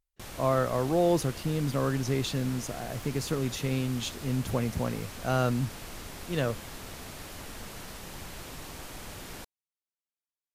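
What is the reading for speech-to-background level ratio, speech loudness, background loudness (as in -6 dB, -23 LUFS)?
12.5 dB, -30.0 LUFS, -42.5 LUFS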